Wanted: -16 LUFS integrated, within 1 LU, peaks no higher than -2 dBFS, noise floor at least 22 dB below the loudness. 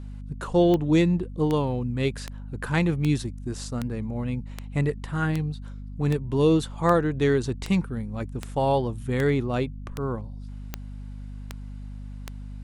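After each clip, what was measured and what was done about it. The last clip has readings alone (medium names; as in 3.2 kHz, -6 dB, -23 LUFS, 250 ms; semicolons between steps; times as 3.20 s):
clicks found 16; hum 50 Hz; highest harmonic 250 Hz; hum level -35 dBFS; loudness -25.5 LUFS; peak level -7.5 dBFS; loudness target -16.0 LUFS
-> de-click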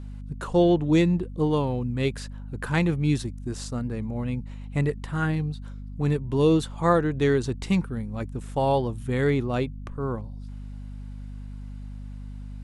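clicks found 0; hum 50 Hz; highest harmonic 250 Hz; hum level -35 dBFS
-> hum notches 50/100/150/200/250 Hz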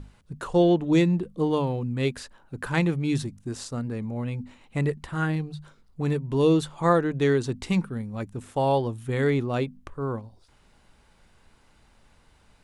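hum not found; loudness -26.0 LUFS; peak level -7.5 dBFS; loudness target -16.0 LUFS
-> trim +10 dB; peak limiter -2 dBFS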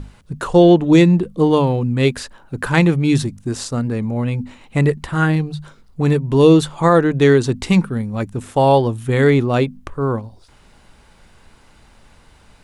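loudness -16.5 LUFS; peak level -2.0 dBFS; noise floor -50 dBFS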